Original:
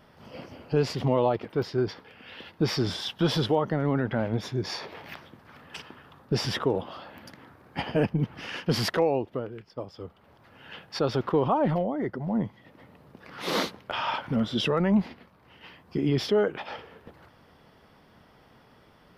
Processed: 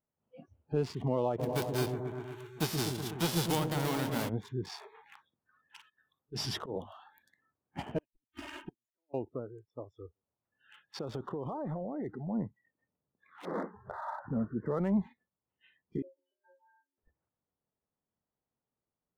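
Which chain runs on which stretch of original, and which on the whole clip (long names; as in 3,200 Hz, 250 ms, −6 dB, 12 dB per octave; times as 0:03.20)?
0:01.38–0:04.28: spectral envelope flattened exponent 0.3 + echo whose low-pass opens from repeat to repeat 124 ms, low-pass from 400 Hz, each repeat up 1 octave, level −3 dB
0:05.80–0:07.23: high-shelf EQ 4,100 Hz +8 dB + mains-hum notches 50/100/150/200/250 Hz + volume swells 104 ms
0:07.98–0:09.14: comb filter 3.2 ms, depth 84% + gate with flip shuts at −19 dBFS, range −42 dB + multiband upward and downward compressor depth 100%
0:09.99–0:12.20: single-tap delay 156 ms −20.5 dB + downward compressor 20 to 1, threshold −25 dBFS
0:13.45–0:14.79: Butterworth low-pass 1,900 Hz 72 dB per octave + upward compression, threshold −30 dBFS
0:16.02–0:16.98: compressor whose output falls as the input rises −26 dBFS, ratio −0.5 + resonances in every octave F, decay 0.52 s + frequency shifter +190 Hz
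whole clip: adaptive Wiener filter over 9 samples; noise reduction from a noise print of the clip's start 28 dB; parametric band 1,900 Hz −5.5 dB 1.6 octaves; level −6.5 dB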